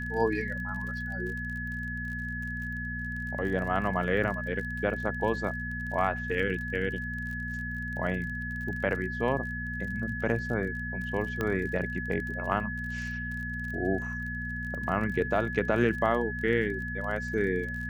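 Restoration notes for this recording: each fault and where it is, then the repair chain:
crackle 34 per s -37 dBFS
hum 60 Hz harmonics 4 -37 dBFS
whine 1.7 kHz -35 dBFS
11.41 s: pop -17 dBFS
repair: de-click; de-hum 60 Hz, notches 4; band-stop 1.7 kHz, Q 30

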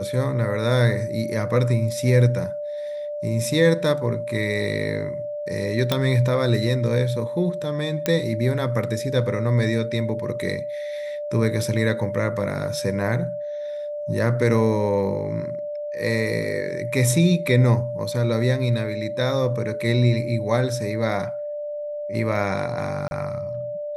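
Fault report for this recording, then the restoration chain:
whine 590 Hz -27 dBFS
5.92 s: pop -6 dBFS
8.06 s: pop -6 dBFS
23.08–23.11 s: dropout 31 ms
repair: de-click; band-stop 590 Hz, Q 30; interpolate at 23.08 s, 31 ms

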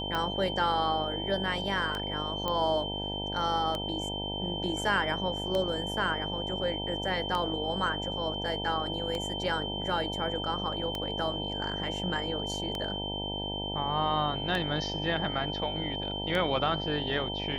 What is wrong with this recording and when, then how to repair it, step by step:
buzz 50 Hz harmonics 19 -37 dBFS
tick 33 1/3 rpm -18 dBFS
whine 3.1 kHz -35 dBFS
2.48 s: pop -17 dBFS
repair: de-click; de-hum 50 Hz, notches 19; band-stop 3.1 kHz, Q 30

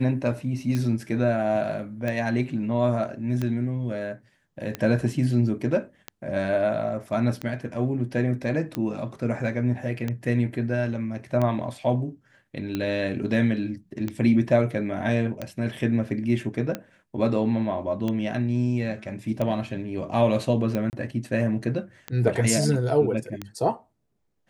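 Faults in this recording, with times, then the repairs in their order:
tick 45 rpm -15 dBFS
20.90–20.93 s: dropout 29 ms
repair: de-click; interpolate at 20.90 s, 29 ms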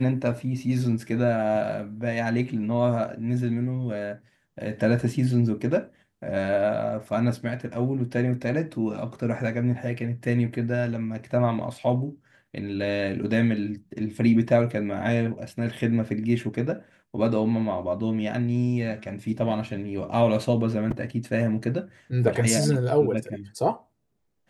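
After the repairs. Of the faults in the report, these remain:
nothing left

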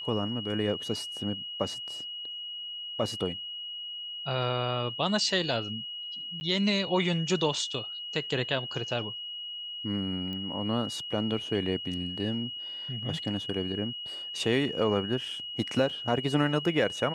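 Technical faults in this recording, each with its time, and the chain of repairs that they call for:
whine 2.9 kHz -36 dBFS
6.40–6.41 s: dropout 10 ms
10.33 s: pop -26 dBFS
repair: de-click; band-stop 2.9 kHz, Q 30; interpolate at 6.40 s, 10 ms

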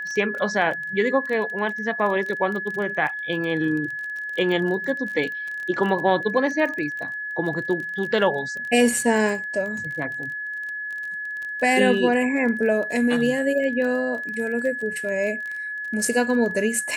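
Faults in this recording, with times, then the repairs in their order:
crackle 23 per s -29 dBFS
whine 1.7 kHz -28 dBFS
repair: de-click; band-stop 1.7 kHz, Q 30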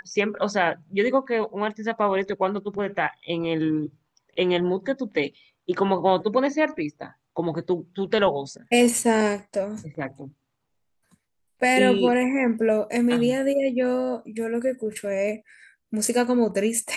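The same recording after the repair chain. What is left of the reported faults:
nothing left

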